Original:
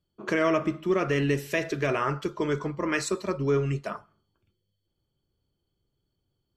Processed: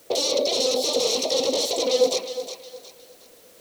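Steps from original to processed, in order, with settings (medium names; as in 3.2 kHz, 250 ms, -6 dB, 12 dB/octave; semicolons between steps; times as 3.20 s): high-pass 94 Hz 12 dB/octave; band-stop 3.1 kHz; in parallel at -1 dB: peak limiter -20 dBFS, peak gain reduction 7 dB; on the sum: compression 6:1, threshold -27 dBFS, peak gain reduction 11 dB; sine folder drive 20 dB, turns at -15 dBFS; vowel filter i; wide varispeed 1.82×; added noise white -63 dBFS; on a send: thinning echo 362 ms, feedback 35%, high-pass 370 Hz, level -10 dB; on the sum: trim +8.5 dB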